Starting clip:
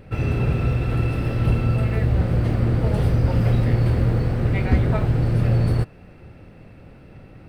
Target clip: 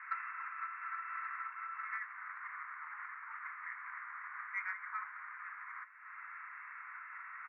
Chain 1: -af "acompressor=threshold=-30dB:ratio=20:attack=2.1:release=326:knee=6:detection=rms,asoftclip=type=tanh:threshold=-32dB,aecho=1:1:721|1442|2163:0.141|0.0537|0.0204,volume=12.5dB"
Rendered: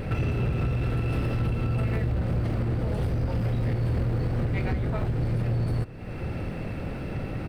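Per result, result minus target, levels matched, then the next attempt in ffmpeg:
2,000 Hz band −15.0 dB; echo 401 ms early
-af "acompressor=threshold=-30dB:ratio=20:attack=2.1:release=326:knee=6:detection=rms,asuperpass=centerf=1500:order=12:qfactor=1.3,asoftclip=type=tanh:threshold=-32dB,aecho=1:1:721|1442|2163:0.141|0.0537|0.0204,volume=12.5dB"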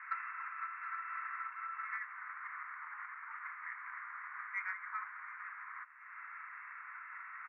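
echo 401 ms early
-af "acompressor=threshold=-30dB:ratio=20:attack=2.1:release=326:knee=6:detection=rms,asuperpass=centerf=1500:order=12:qfactor=1.3,asoftclip=type=tanh:threshold=-32dB,aecho=1:1:1122|2244|3366:0.141|0.0537|0.0204,volume=12.5dB"

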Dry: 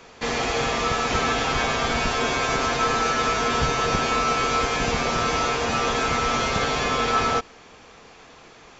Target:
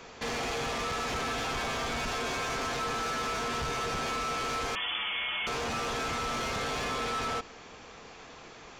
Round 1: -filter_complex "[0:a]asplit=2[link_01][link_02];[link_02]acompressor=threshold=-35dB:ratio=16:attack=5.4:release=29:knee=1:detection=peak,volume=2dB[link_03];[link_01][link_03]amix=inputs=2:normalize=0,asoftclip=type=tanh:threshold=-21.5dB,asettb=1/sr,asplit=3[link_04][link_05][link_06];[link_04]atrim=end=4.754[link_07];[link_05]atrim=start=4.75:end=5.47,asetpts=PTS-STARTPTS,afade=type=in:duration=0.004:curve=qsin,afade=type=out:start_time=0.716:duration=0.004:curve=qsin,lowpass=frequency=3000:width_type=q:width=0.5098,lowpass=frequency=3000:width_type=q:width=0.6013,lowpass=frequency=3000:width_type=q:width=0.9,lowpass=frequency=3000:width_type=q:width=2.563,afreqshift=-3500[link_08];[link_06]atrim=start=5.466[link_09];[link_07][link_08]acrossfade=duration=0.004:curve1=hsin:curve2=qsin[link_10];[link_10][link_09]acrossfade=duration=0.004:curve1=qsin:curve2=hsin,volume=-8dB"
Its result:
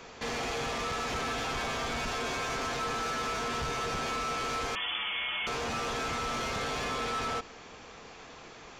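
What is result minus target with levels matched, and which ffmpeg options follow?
downward compressor: peak gain reduction +5.5 dB
-filter_complex "[0:a]asplit=2[link_01][link_02];[link_02]acompressor=threshold=-29dB:ratio=16:attack=5.4:release=29:knee=1:detection=peak,volume=2dB[link_03];[link_01][link_03]amix=inputs=2:normalize=0,asoftclip=type=tanh:threshold=-21.5dB,asettb=1/sr,asplit=3[link_04][link_05][link_06];[link_04]atrim=end=4.754[link_07];[link_05]atrim=start=4.75:end=5.47,asetpts=PTS-STARTPTS,afade=type=in:duration=0.004:curve=qsin,afade=type=out:start_time=0.716:duration=0.004:curve=qsin,lowpass=frequency=3000:width_type=q:width=0.5098,lowpass=frequency=3000:width_type=q:width=0.6013,lowpass=frequency=3000:width_type=q:width=0.9,lowpass=frequency=3000:width_type=q:width=2.563,afreqshift=-3500[link_08];[link_06]atrim=start=5.466[link_09];[link_07][link_08]acrossfade=duration=0.004:curve1=hsin:curve2=qsin[link_10];[link_10][link_09]acrossfade=duration=0.004:curve1=qsin:curve2=hsin,volume=-8dB"

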